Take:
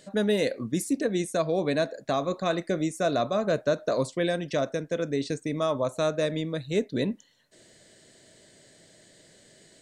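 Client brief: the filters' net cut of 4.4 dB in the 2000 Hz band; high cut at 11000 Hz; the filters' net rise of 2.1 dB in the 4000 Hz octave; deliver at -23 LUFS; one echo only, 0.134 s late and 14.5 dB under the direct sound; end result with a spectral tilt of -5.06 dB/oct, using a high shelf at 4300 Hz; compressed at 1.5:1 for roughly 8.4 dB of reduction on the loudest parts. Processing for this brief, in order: LPF 11000 Hz; bell 2000 Hz -6.5 dB; bell 4000 Hz +6 dB; high shelf 4300 Hz -4.5 dB; compressor 1.5:1, threshold -45 dBFS; echo 0.134 s -14.5 dB; gain +13 dB

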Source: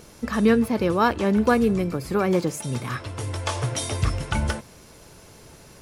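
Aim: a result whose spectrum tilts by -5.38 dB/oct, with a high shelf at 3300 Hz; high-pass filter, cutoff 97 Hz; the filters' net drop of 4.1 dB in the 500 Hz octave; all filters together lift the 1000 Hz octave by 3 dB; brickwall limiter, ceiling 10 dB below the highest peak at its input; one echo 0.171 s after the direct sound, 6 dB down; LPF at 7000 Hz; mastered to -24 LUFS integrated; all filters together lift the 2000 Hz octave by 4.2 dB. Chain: HPF 97 Hz; LPF 7000 Hz; bell 500 Hz -6 dB; bell 1000 Hz +4.5 dB; bell 2000 Hz +6 dB; high shelf 3300 Hz -6.5 dB; limiter -15 dBFS; echo 0.171 s -6 dB; gain +2 dB

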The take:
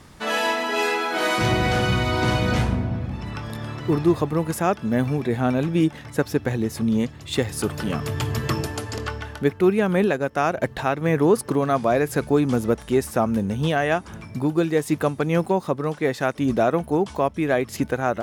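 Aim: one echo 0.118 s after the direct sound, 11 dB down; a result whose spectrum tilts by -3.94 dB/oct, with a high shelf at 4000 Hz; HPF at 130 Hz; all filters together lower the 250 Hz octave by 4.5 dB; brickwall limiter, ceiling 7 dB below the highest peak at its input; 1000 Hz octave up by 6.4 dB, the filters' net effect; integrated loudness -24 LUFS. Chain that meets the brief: HPF 130 Hz; bell 250 Hz -6.5 dB; bell 1000 Hz +8.5 dB; high shelf 4000 Hz +9 dB; limiter -10 dBFS; echo 0.118 s -11 dB; gain -1 dB

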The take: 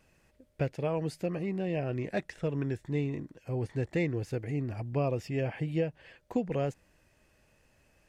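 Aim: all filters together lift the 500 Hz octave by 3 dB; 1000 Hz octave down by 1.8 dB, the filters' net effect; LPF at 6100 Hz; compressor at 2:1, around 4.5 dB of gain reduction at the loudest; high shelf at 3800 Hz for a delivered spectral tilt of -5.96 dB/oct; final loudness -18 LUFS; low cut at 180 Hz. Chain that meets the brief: HPF 180 Hz; LPF 6100 Hz; bell 500 Hz +5 dB; bell 1000 Hz -6.5 dB; high shelf 3800 Hz +3 dB; compressor 2:1, threshold -32 dBFS; gain +18.5 dB

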